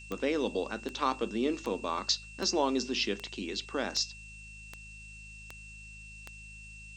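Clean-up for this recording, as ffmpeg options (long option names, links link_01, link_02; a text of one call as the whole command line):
ffmpeg -i in.wav -af "adeclick=threshold=4,bandreject=frequency=52.8:width_type=h:width=4,bandreject=frequency=105.6:width_type=h:width=4,bandreject=frequency=158.4:width_type=h:width=4,bandreject=frequency=211.2:width_type=h:width=4,bandreject=frequency=2700:width=30,afftdn=noise_reduction=30:noise_floor=-48" out.wav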